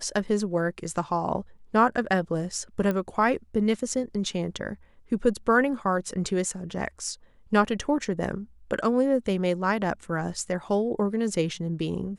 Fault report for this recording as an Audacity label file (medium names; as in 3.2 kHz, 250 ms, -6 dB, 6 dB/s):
2.910000	2.910000	pop -16 dBFS